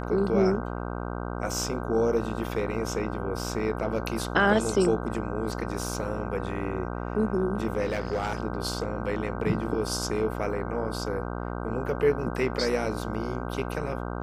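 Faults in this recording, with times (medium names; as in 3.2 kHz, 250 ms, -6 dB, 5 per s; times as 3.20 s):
buzz 60 Hz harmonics 26 -33 dBFS
7.84–8.38 s: clipped -23 dBFS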